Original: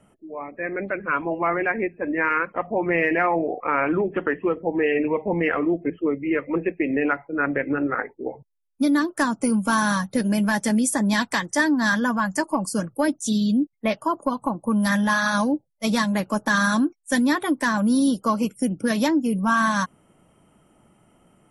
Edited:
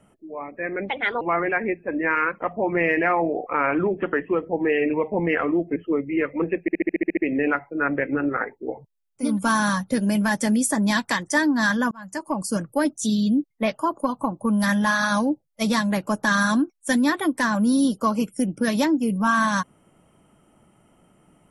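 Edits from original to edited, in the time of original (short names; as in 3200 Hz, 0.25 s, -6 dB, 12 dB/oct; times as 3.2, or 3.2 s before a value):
0.89–1.35 speed 143%
6.75 stutter 0.07 s, 9 plays
8.85–9.5 cut, crossfade 0.24 s
12.14–12.7 fade in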